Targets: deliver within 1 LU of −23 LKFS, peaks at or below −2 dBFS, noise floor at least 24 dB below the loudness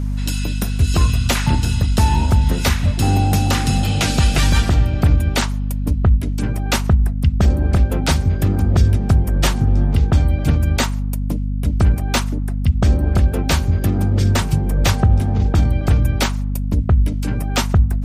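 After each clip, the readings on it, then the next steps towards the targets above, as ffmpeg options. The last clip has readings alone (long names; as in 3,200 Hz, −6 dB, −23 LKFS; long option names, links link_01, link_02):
mains hum 50 Hz; hum harmonics up to 250 Hz; level of the hum −18 dBFS; integrated loudness −17.5 LKFS; sample peak −4.0 dBFS; target loudness −23.0 LKFS
→ -af "bandreject=frequency=50:width_type=h:width=4,bandreject=frequency=100:width_type=h:width=4,bandreject=frequency=150:width_type=h:width=4,bandreject=frequency=200:width_type=h:width=4,bandreject=frequency=250:width_type=h:width=4"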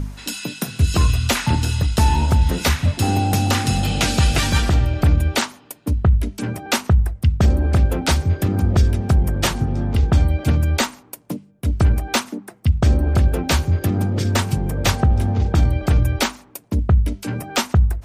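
mains hum none found; integrated loudness −19.5 LKFS; sample peak −4.0 dBFS; target loudness −23.0 LKFS
→ -af "volume=-3.5dB"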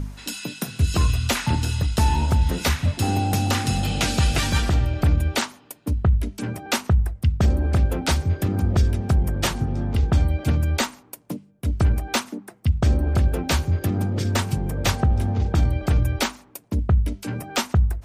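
integrated loudness −23.0 LKFS; sample peak −7.5 dBFS; background noise floor −53 dBFS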